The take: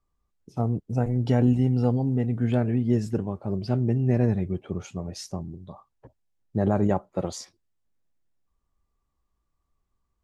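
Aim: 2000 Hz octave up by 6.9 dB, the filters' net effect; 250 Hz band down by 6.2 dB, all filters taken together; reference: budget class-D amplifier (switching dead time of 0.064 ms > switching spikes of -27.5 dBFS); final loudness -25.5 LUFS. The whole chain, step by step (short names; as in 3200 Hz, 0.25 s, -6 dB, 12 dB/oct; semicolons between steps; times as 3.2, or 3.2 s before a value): bell 250 Hz -7.5 dB; bell 2000 Hz +9 dB; switching dead time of 0.064 ms; switching spikes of -27.5 dBFS; gain +3 dB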